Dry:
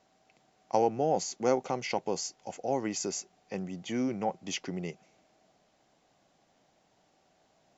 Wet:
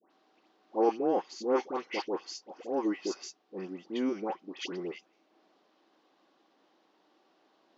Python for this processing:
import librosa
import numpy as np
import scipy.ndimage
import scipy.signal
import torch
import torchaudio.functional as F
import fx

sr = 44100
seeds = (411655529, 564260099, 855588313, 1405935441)

y = fx.transient(x, sr, attack_db=-10, sustain_db=-6)
y = fx.cabinet(y, sr, low_hz=250.0, low_slope=24, high_hz=4700.0, hz=(330.0, 670.0, 1100.0, 2200.0), db=(7, -7, 5, -4))
y = fx.dispersion(y, sr, late='highs', ms=109.0, hz=1400.0)
y = F.gain(torch.from_numpy(y), 2.5).numpy()